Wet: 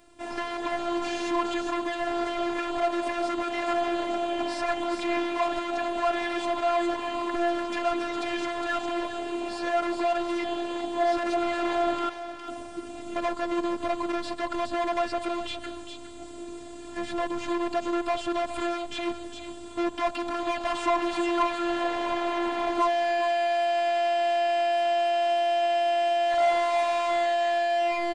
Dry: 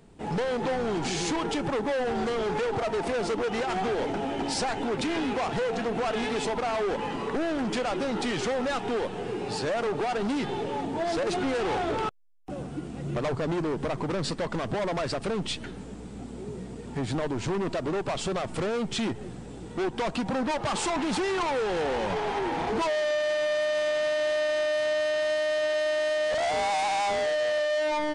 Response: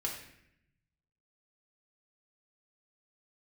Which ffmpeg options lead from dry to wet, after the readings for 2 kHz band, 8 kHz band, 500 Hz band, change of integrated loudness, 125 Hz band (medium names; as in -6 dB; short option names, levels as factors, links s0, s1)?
0.0 dB, -6.0 dB, 0.0 dB, +1.0 dB, -18.5 dB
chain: -filter_complex "[0:a]lowshelf=f=290:g=-9,afftfilt=real='hypot(re,im)*cos(PI*b)':imag='0':win_size=512:overlap=0.75,equalizer=f=390:w=4.8:g=-6.5,asplit=2[s0][s1];[s1]aecho=0:1:409:0.266[s2];[s0][s2]amix=inputs=2:normalize=0,acrossover=split=2700[s3][s4];[s4]acompressor=threshold=0.00398:ratio=4:attack=1:release=60[s5];[s3][s5]amix=inputs=2:normalize=0,volume=2.37"